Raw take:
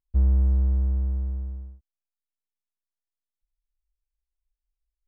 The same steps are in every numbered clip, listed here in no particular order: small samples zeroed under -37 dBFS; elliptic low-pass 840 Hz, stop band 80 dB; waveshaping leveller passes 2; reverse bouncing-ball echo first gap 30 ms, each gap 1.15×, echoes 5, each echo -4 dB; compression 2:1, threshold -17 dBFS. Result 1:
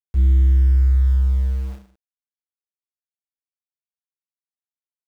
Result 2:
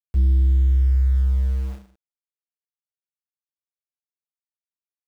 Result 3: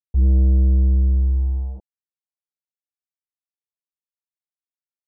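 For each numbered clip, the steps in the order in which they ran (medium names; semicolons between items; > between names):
elliptic low-pass > waveshaping leveller > small samples zeroed > compression > reverse bouncing-ball echo; waveshaping leveller > elliptic low-pass > small samples zeroed > reverse bouncing-ball echo > compression; compression > reverse bouncing-ball echo > waveshaping leveller > small samples zeroed > elliptic low-pass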